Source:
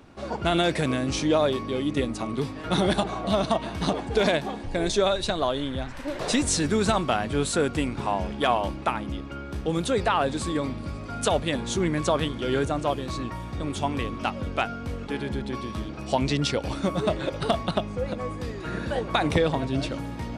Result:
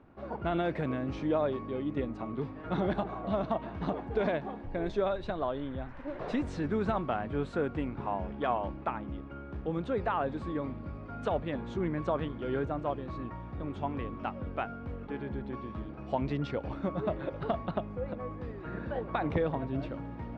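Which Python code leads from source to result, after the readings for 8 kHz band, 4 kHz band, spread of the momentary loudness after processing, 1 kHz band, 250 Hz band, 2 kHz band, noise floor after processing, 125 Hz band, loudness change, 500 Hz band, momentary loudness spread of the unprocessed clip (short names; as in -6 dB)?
under -30 dB, -20.0 dB, 9 LU, -7.5 dB, -7.0 dB, -10.5 dB, -44 dBFS, -7.0 dB, -8.0 dB, -7.0 dB, 9 LU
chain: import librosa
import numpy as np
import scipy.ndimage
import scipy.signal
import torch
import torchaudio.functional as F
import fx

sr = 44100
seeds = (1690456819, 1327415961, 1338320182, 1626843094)

y = scipy.signal.sosfilt(scipy.signal.butter(2, 1700.0, 'lowpass', fs=sr, output='sos'), x)
y = F.gain(torch.from_numpy(y), -7.0).numpy()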